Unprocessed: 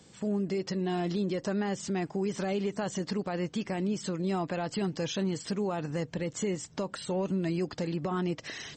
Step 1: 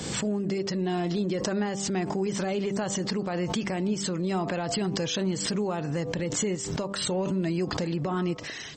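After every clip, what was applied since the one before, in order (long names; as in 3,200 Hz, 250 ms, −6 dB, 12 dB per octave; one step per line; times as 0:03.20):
hum removal 98.58 Hz, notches 13
background raised ahead of every attack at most 36 dB per second
level +2.5 dB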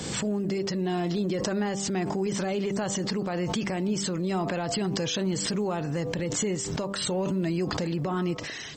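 transient designer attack −1 dB, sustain +4 dB
floating-point word with a short mantissa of 6 bits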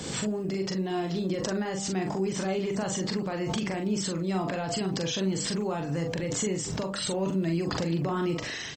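speech leveller 2 s
double-tracking delay 42 ms −5 dB
level −2.5 dB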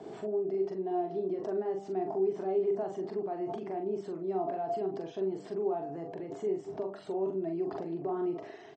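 pair of resonant band-passes 520 Hz, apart 0.73 octaves
level +3.5 dB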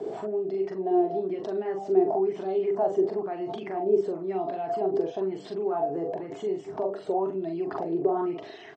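auto-filter bell 1 Hz 410–3,900 Hz +13 dB
level +2.5 dB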